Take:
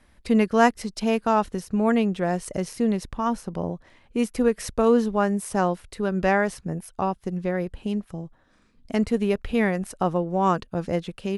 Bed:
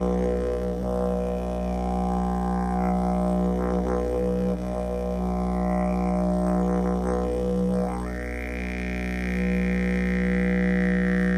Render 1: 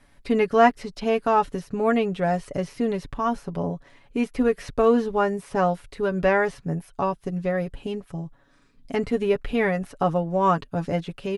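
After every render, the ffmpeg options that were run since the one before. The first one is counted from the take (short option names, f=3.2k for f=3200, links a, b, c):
-filter_complex "[0:a]acrossover=split=4100[a][b];[b]acompressor=threshold=-52dB:ratio=4:attack=1:release=60[c];[a][c]amix=inputs=2:normalize=0,aecho=1:1:7.1:0.62"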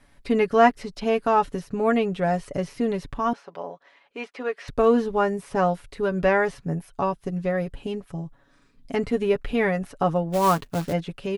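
-filter_complex "[0:a]asettb=1/sr,asplit=3[a][b][c];[a]atrim=end=3.334[d];[b]atrim=start=3.33:end=4.68,asetpts=PTS-STARTPTS,afade=t=in:d=0.004:c=qsin,afade=t=out:st=1.346:d=0.004:c=qsin,highpass=600,lowpass=4.5k[e];[c]atrim=start=4.676[f];[d][e]acrossfade=d=0.004:c1=hsin:c2=qsin[g];[g][f]acrossfade=d=0.004:c1=qsin:c2=hsin,asplit=3[h][i][j];[h]afade=t=out:st=10.32:d=0.02[k];[i]acrusher=bits=3:mode=log:mix=0:aa=0.000001,afade=t=in:st=10.32:d=0.02,afade=t=out:st=10.92:d=0.02[l];[j]afade=t=in:st=10.92:d=0.02[m];[k][l][m]amix=inputs=3:normalize=0"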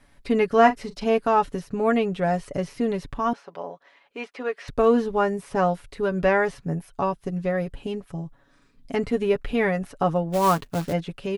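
-filter_complex "[0:a]asettb=1/sr,asplit=3[a][b][c];[a]atrim=end=0.544[d];[b]atrim=start=0.54:end=1.18,asetpts=PTS-STARTPTS,afade=t=in:d=0.004:c=qsin,afade=t=out:st=0.636:d=0.004:c=qsin,asplit=2[e][f];[f]adelay=40,volume=-12dB[g];[e][g]amix=inputs=2:normalize=0,atrim=end_sample=28224[h];[c]atrim=start=1.176[i];[d][h]acrossfade=d=0.004:c1=hsin:c2=qsin[j];[j][i]acrossfade=d=0.004:c1=qsin:c2=hsin"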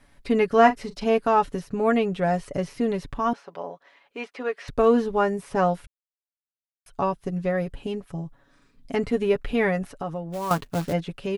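-filter_complex "[0:a]asettb=1/sr,asplit=3[a][b][c];[a]atrim=end=9.894[d];[b]atrim=start=9.89:end=10.51,asetpts=PTS-STARTPTS,afade=t=in:d=0.004:c=qsin,afade=t=out:st=0.616:d=0.004:c=qsin,acompressor=threshold=-34dB:ratio=2:attack=3.2:release=140:knee=1:detection=peak[e];[c]atrim=start=10.506[f];[d][e]acrossfade=d=0.004:c1=hsin:c2=qsin[g];[g][f]acrossfade=d=0.004:c1=qsin:c2=hsin,asplit=3[h][i][j];[h]atrim=end=5.87,asetpts=PTS-STARTPTS,afade=t=out:st=5.866:d=0.004:c=hsin[k];[i]atrim=start=5.87:end=6.86,asetpts=PTS-STARTPTS,volume=0[l];[j]atrim=start=6.86,asetpts=PTS-STARTPTS,afade=t=in:d=0.004:c=hsin[m];[k][l][m]concat=n=3:v=0:a=1"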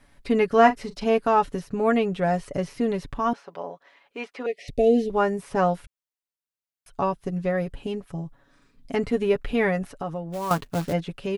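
-filter_complex "[0:a]asettb=1/sr,asplit=3[a][b][c];[a]atrim=end=4.464[d];[b]atrim=start=4.46:end=5.1,asetpts=PTS-STARTPTS,afade=t=in:d=0.004:c=qsin,afade=t=out:st=0.636:d=0.004:c=qsin,asuperstop=centerf=1200:order=12:qfactor=0.99[e];[c]atrim=start=5.096[f];[d][e]acrossfade=d=0.004:c1=hsin:c2=qsin[g];[g][f]acrossfade=d=0.004:c1=qsin:c2=hsin"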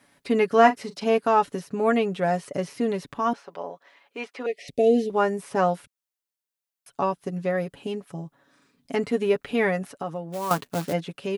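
-af "highpass=170,highshelf=f=6.1k:g=4.5"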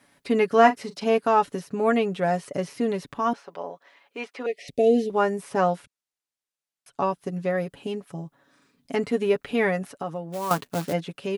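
-filter_complex "[0:a]asettb=1/sr,asplit=3[a][b][c];[a]atrim=end=5.574[d];[b]atrim=start=5.57:end=7.09,asetpts=PTS-STARTPTS,afade=t=in:d=0.004:c=qsin,afade=t=out:st=1.516:d=0.004:c=qsin,lowpass=10k[e];[c]atrim=start=7.086[f];[d][e]acrossfade=d=0.004:c1=hsin:c2=qsin[g];[g][f]acrossfade=d=0.004:c1=qsin:c2=hsin"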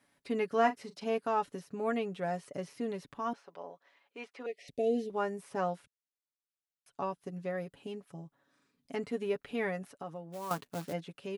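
-af "volume=-11dB"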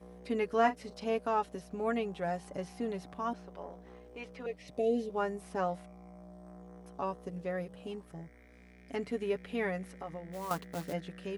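-filter_complex "[1:a]volume=-28dB[a];[0:a][a]amix=inputs=2:normalize=0"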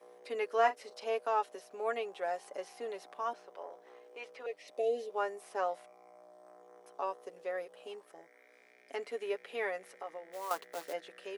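-af "highpass=f=410:w=0.5412,highpass=f=410:w=1.3066"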